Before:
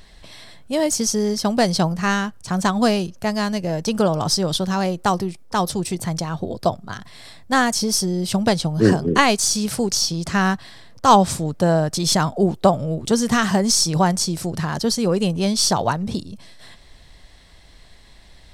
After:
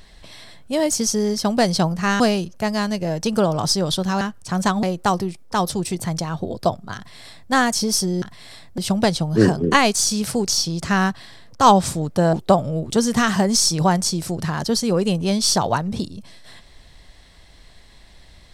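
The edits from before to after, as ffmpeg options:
-filter_complex "[0:a]asplit=7[s0][s1][s2][s3][s4][s5][s6];[s0]atrim=end=2.202[s7];[s1]atrim=start=2.818:end=4.832[s8];[s2]atrim=start=2.198:end=2.822[s9];[s3]atrim=start=4.828:end=8.222[s10];[s4]atrim=start=6.958:end=7.522[s11];[s5]atrim=start=8.218:end=11.772[s12];[s6]atrim=start=12.478[s13];[s7][s8]acrossfade=d=0.004:c1=hsin:c2=hsin[s14];[s14][s9]acrossfade=d=0.004:c1=hsin:c2=hsin[s15];[s15][s10]acrossfade=d=0.004:c1=hsin:c2=hsin[s16];[s16][s11]acrossfade=d=0.004:c1=hsin:c2=hsin[s17];[s17][s12]acrossfade=d=0.004:c1=hsin:c2=hsin[s18];[s18][s13]acrossfade=d=0.004:c1=hsin:c2=hsin"

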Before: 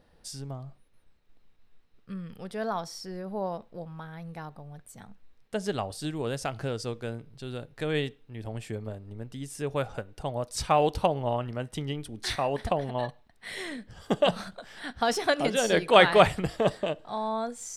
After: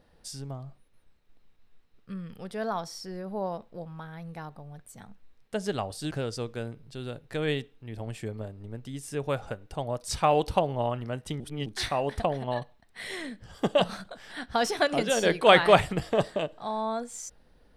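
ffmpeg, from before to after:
-filter_complex "[0:a]asplit=4[s0][s1][s2][s3];[s0]atrim=end=6.112[s4];[s1]atrim=start=6.578:end=11.872[s5];[s2]atrim=start=11.868:end=12.132,asetpts=PTS-STARTPTS,areverse[s6];[s3]atrim=start=12.128[s7];[s4][s5]acrossfade=d=0.004:c1=hsin:c2=hsin[s8];[s8][s6]acrossfade=d=0.004:c1=hsin:c2=hsin[s9];[s9][s7]acrossfade=d=0.004:c1=hsin:c2=hsin"

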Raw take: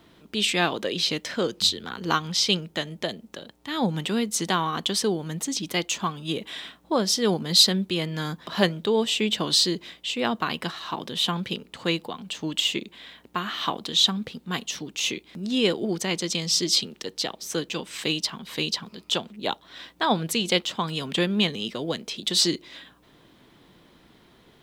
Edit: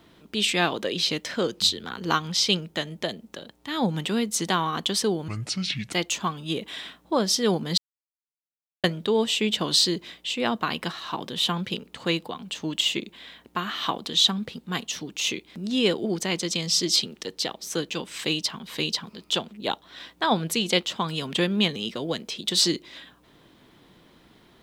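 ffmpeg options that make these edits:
-filter_complex "[0:a]asplit=5[s0][s1][s2][s3][s4];[s0]atrim=end=5.284[s5];[s1]atrim=start=5.28:end=5.72,asetpts=PTS-STARTPTS,asetrate=29988,aresample=44100,atrim=end_sample=28535,asetpts=PTS-STARTPTS[s6];[s2]atrim=start=5.716:end=7.57,asetpts=PTS-STARTPTS,afade=t=out:st=1.85:d=0.004:c=hsin[s7];[s3]atrim=start=7.57:end=8.63,asetpts=PTS-STARTPTS,volume=0[s8];[s4]atrim=start=8.63,asetpts=PTS-STARTPTS,afade=t=in:d=0.004:c=hsin[s9];[s5][s6]acrossfade=d=0.004:c1=hsin:c2=hsin[s10];[s7][s8][s9]concat=n=3:v=0:a=1[s11];[s10][s11]acrossfade=d=0.004:c1=hsin:c2=hsin"

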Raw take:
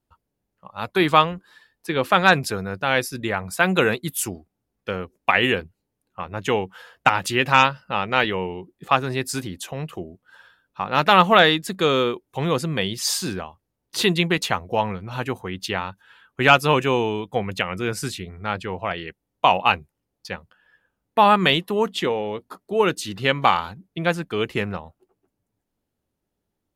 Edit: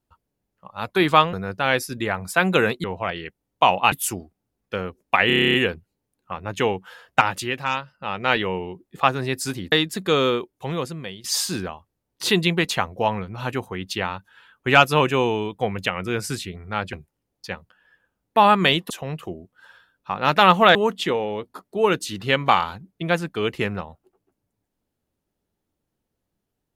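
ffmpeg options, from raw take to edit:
-filter_complex "[0:a]asplit=20[s0][s1][s2][s3][s4][s5][s6][s7][s8][s9][s10][s11][s12][s13][s14][s15][s16][s17][s18][s19];[s0]atrim=end=1.332[s20];[s1]atrim=start=2.558:end=4.072[s21];[s2]atrim=start=18.658:end=19.742[s22];[s3]atrim=start=4.068:end=5.452[s23];[s4]atrim=start=5.418:end=5.452[s24];[s5]atrim=start=5.418:end=5.452[s25];[s6]atrim=start=5.418:end=5.452[s26];[s7]atrim=start=5.418:end=5.452[s27];[s8]atrim=start=5.418:end=5.452[s28];[s9]atrim=start=5.418:end=5.452[s29];[s10]atrim=start=5.418:end=5.452[s30];[s11]atrim=start=5.418:end=5.452[s31];[s12]atrim=start=5.418:end=7.49,asetpts=PTS-STARTPTS,afade=t=out:st=1.652:d=0.42:silence=0.334965[s32];[s13]atrim=start=7.49:end=7.81,asetpts=PTS-STARTPTS,volume=0.335[s33];[s14]atrim=start=7.81:end=9.602,asetpts=PTS-STARTPTS,afade=t=in:d=0.42:silence=0.334965[s34];[s15]atrim=start=11.448:end=12.97,asetpts=PTS-STARTPTS,afade=t=out:st=0.612:d=0.91:silence=0.149624[s35];[s16]atrim=start=12.97:end=18.662,asetpts=PTS-STARTPTS,afade=t=in:d=0.004:c=hsin:silence=0.149624[s36];[s17]atrim=start=19.738:end=21.712[s37];[s18]atrim=start=9.598:end=11.452[s38];[s19]atrim=start=21.708[s39];[s20][s21]acrossfade=d=0.004:c1=hsin:c2=hsin[s40];[s40][s22]acrossfade=d=0.004:c1=hsin:c2=hsin[s41];[s41][s23]acrossfade=d=0.004:c1=hsin:c2=hsin[s42];[s42][s24]acrossfade=d=0.004:c1=hsin:c2=hsin[s43];[s43][s25]acrossfade=d=0.004:c1=hsin:c2=hsin[s44];[s44][s26]acrossfade=d=0.004:c1=hsin:c2=hsin[s45];[s45][s27]acrossfade=d=0.004:c1=hsin:c2=hsin[s46];[s46][s28]acrossfade=d=0.004:c1=hsin:c2=hsin[s47];[s47][s29]acrossfade=d=0.004:c1=hsin:c2=hsin[s48];[s48][s30]acrossfade=d=0.004:c1=hsin:c2=hsin[s49];[s49][s31]acrossfade=d=0.004:c1=hsin:c2=hsin[s50];[s32][s33][s34]concat=n=3:v=0:a=1[s51];[s50][s51]acrossfade=d=0.004:c1=hsin:c2=hsin[s52];[s35][s36]concat=n=2:v=0:a=1[s53];[s52][s53]acrossfade=d=0.004:c1=hsin:c2=hsin[s54];[s54][s37]acrossfade=d=0.004:c1=hsin:c2=hsin[s55];[s55][s38]acrossfade=d=0.004:c1=hsin:c2=hsin[s56];[s56][s39]acrossfade=d=0.004:c1=hsin:c2=hsin"

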